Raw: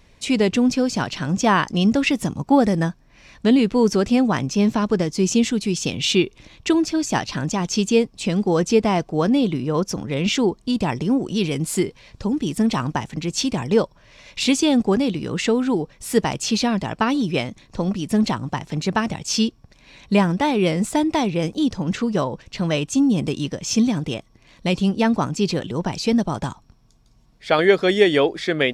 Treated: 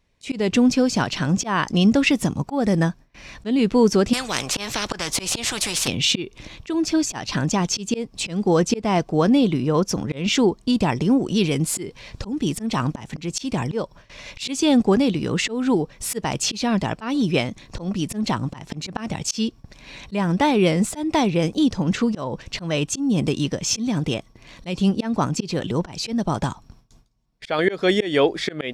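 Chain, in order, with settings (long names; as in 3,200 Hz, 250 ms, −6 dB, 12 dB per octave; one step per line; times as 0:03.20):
noise gate with hold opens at −41 dBFS
volume swells 237 ms
in parallel at +1 dB: downward compressor, threshold −33 dBFS, peak gain reduction 19.5 dB
0:04.13–0:05.88: on the sum: every bin compressed towards the loudest bin 4 to 1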